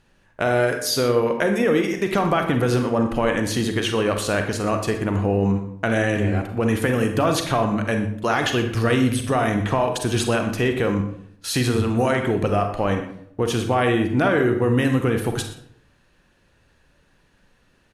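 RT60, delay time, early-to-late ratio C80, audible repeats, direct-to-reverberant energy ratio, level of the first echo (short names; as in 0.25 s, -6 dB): 0.65 s, 0.121 s, 10.0 dB, 1, 5.0 dB, -16.5 dB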